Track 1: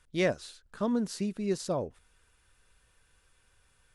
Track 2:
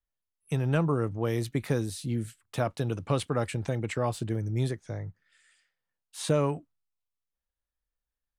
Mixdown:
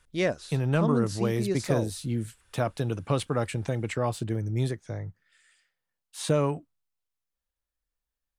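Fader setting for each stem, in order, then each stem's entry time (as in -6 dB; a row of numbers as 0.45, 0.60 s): +1.0, +1.0 dB; 0.00, 0.00 s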